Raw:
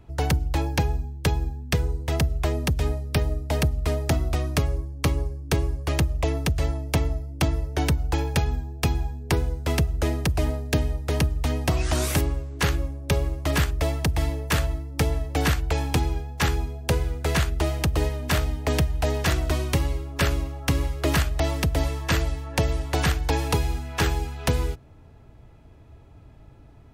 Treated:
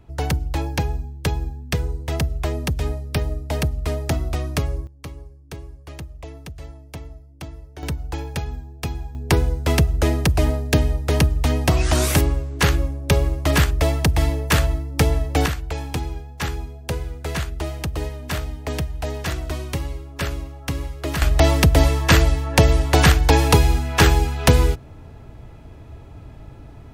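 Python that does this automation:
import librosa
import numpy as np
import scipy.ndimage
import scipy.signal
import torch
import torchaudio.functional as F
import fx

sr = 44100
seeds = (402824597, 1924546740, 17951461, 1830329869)

y = fx.gain(x, sr, db=fx.steps((0.0, 0.5), (4.87, -12.5), (7.83, -4.0), (9.15, 5.5), (15.46, -3.0), (21.22, 9.0)))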